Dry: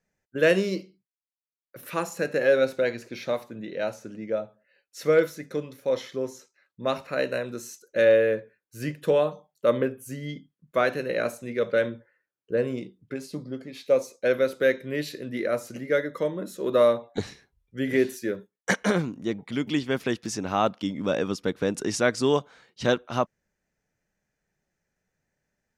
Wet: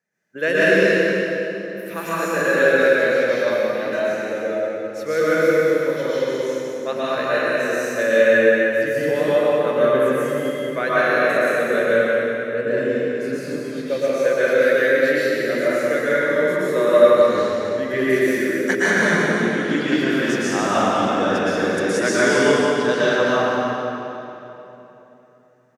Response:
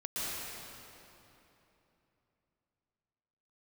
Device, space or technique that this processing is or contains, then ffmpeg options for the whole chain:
stadium PA: -filter_complex "[0:a]highpass=180,equalizer=f=1.7k:t=o:w=0.56:g=6.5,aecho=1:1:177.8|271.1:0.355|0.316[a];[1:a]atrim=start_sample=2205[b];[a][b]afir=irnorm=-1:irlink=0,volume=1.5dB"

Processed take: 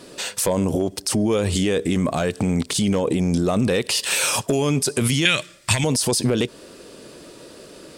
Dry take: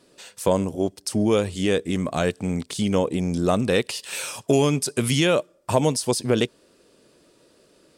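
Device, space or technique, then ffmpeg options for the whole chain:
loud club master: -filter_complex "[0:a]acompressor=threshold=-23dB:ratio=2,asoftclip=type=hard:threshold=-14dB,alimiter=level_in=25.5dB:limit=-1dB:release=50:level=0:latency=1,asettb=1/sr,asplit=3[a][b][c];[a]atrim=end=5.254[d];[b]atrim=start=5.25:end=5.84,asetpts=PTS-STARTPTS,afade=t=in:d=0.004:c=qsin,afade=t=out:st=0.586:d=0.004:c=qsin,equalizer=f=125:t=o:w=1:g=5,equalizer=f=250:t=o:w=1:g=-5,equalizer=f=500:t=o:w=1:g=-12,equalizer=f=1k:t=o:w=1:g=-5,equalizer=f=2k:t=o:w=1:g=12,equalizer=f=4k:t=o:w=1:g=9,equalizer=f=8k:t=o:w=1:g=8[e];[c]atrim=start=5.836[f];[d][e]acrossfade=d=0.004:c1=hsin:c2=qsin[g];[g][f]acrossfade=d=0.004:c1=qsin:c2=hsin,volume=-10.5dB"

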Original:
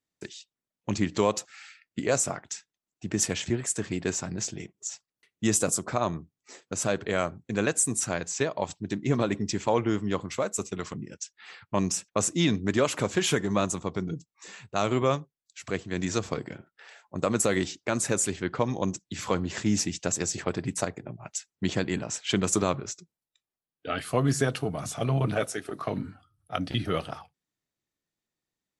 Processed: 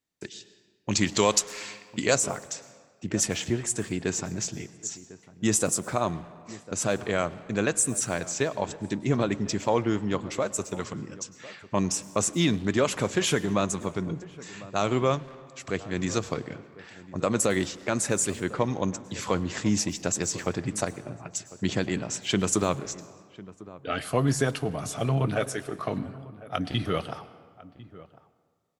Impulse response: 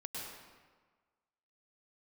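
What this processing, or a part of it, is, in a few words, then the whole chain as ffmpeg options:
saturated reverb return: -filter_complex "[0:a]asplit=2[a][b];[1:a]atrim=start_sample=2205[c];[b][c]afir=irnorm=-1:irlink=0,asoftclip=type=tanh:threshold=-31.5dB,volume=-10.5dB[d];[a][d]amix=inputs=2:normalize=0,asettb=1/sr,asplit=3[e][f][g];[e]atrim=end=0.914[h];[f]atrim=start=0.91:end=2.15,asetpts=PTS-STARTPTS,afade=t=in:d=0.004:c=qsin,afade=t=out:st=1.236:d=0.004:c=qsin,highshelf=f=2.1k:g=12[i];[g]atrim=start=2.146[j];[h][i]acrossfade=d=0.004:c1=hsin:c2=qsin[k];[k][j]acrossfade=d=0.004:c1=qsin:c2=hsin,asplit=2[l][m];[m]adelay=1050,volume=-18dB,highshelf=f=4k:g=-23.6[n];[l][n]amix=inputs=2:normalize=0"

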